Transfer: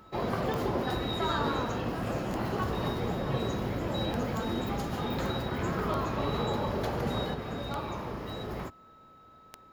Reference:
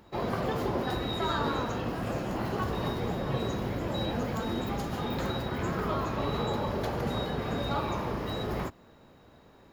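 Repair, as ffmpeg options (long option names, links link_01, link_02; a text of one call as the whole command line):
ffmpeg -i in.wav -af "adeclick=threshold=4,bandreject=frequency=1300:width=30,asetnsamples=nb_out_samples=441:pad=0,asendcmd='7.34 volume volume 4.5dB',volume=0dB" out.wav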